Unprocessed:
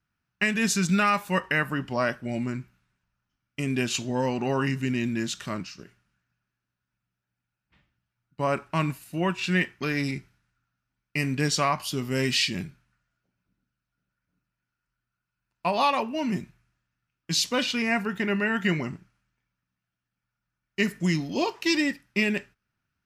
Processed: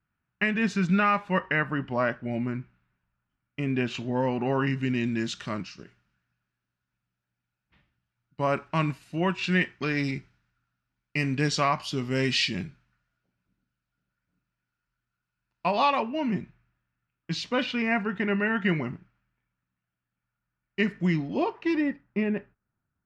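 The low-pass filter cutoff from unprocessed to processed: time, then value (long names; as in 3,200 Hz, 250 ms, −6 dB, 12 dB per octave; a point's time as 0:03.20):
0:04.45 2,500 Hz
0:05.09 5,200 Hz
0:15.66 5,200 Hz
0:16.27 2,700 Hz
0:20.99 2,700 Hz
0:22.05 1,200 Hz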